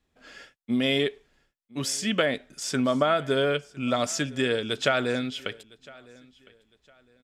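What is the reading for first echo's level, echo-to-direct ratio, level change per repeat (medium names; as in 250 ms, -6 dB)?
-23.5 dB, -23.0 dB, -11.0 dB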